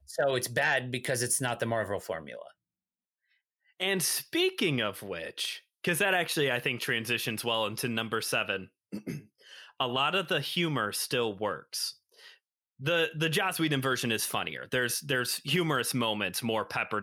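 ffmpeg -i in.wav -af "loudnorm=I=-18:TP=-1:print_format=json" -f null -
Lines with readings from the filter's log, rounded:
"input_i" : "-29.7",
"input_tp" : "-14.4",
"input_lra" : "2.9",
"input_thresh" : "-40.1",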